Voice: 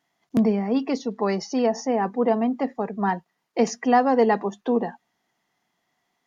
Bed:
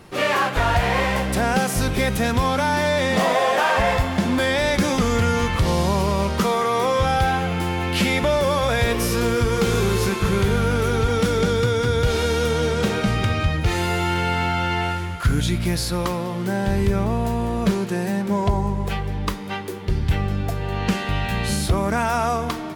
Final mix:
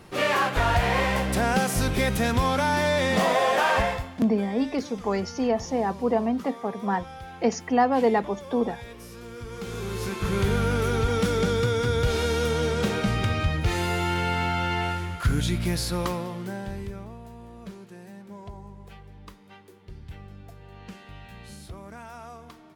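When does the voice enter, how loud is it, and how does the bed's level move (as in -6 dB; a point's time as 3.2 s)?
3.85 s, -2.5 dB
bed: 3.79 s -3 dB
4.23 s -21.5 dB
9.22 s -21.5 dB
10.45 s -4 dB
16.11 s -4 dB
17.21 s -21 dB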